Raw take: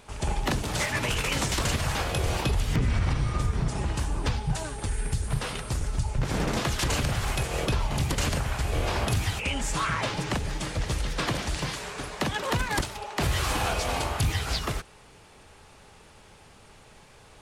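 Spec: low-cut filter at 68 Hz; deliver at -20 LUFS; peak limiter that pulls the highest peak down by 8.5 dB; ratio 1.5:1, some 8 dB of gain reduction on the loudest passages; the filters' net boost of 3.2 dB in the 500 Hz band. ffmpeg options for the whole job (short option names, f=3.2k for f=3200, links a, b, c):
-af "highpass=68,equalizer=f=500:t=o:g=4,acompressor=threshold=-45dB:ratio=1.5,volume=18dB,alimiter=limit=-10.5dB:level=0:latency=1"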